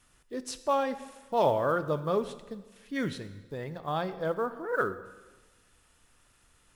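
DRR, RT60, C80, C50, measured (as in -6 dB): 11.5 dB, 1.2 s, 14.5 dB, 13.0 dB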